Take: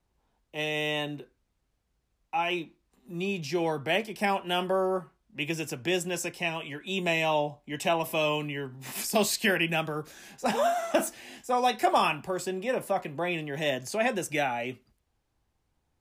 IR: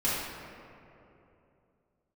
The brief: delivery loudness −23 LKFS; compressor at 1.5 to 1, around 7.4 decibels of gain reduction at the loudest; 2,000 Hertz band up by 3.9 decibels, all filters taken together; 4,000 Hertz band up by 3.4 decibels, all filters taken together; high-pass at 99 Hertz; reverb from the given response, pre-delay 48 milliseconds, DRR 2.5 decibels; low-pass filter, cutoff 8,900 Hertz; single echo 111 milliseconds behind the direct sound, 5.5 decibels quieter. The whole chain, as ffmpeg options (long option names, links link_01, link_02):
-filter_complex "[0:a]highpass=99,lowpass=8900,equalizer=frequency=2000:width_type=o:gain=4,equalizer=frequency=4000:width_type=o:gain=3,acompressor=threshold=-40dB:ratio=1.5,aecho=1:1:111:0.531,asplit=2[link_01][link_02];[1:a]atrim=start_sample=2205,adelay=48[link_03];[link_02][link_03]afir=irnorm=-1:irlink=0,volume=-13dB[link_04];[link_01][link_04]amix=inputs=2:normalize=0,volume=7.5dB"